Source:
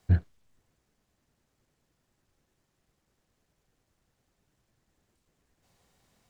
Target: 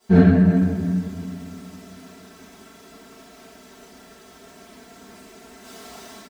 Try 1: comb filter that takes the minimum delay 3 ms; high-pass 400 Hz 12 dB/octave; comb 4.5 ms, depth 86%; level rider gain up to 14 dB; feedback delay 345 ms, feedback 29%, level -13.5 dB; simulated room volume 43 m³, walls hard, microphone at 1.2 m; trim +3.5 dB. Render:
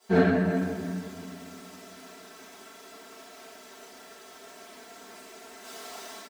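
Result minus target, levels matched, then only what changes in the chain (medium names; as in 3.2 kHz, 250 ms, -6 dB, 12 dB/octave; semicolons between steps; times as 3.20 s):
500 Hz band +8.5 dB
change: high-pass 150 Hz 12 dB/octave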